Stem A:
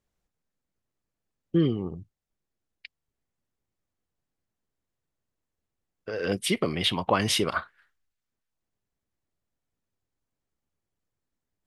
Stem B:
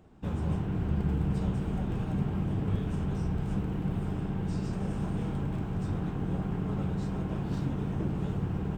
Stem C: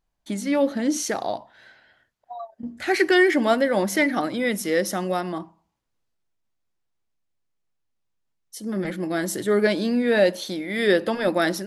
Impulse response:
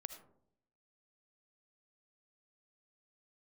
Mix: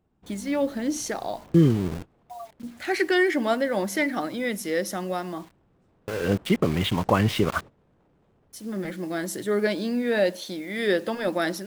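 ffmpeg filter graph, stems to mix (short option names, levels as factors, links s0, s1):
-filter_complex "[0:a]lowpass=2800,lowshelf=f=210:g=10,aeval=exprs='val(0)*gte(abs(val(0)),0.0251)':c=same,volume=1.12,asplit=2[s0][s1];[1:a]aeval=exprs='0.0251*(abs(mod(val(0)/0.0251+3,4)-2)-1)':c=same,volume=0.2[s2];[2:a]acrusher=bits=7:mix=0:aa=0.000001,volume=0.631[s3];[s1]apad=whole_len=386958[s4];[s2][s4]sidechaingate=range=0.224:threshold=0.0141:ratio=16:detection=peak[s5];[s0][s5][s3]amix=inputs=3:normalize=0"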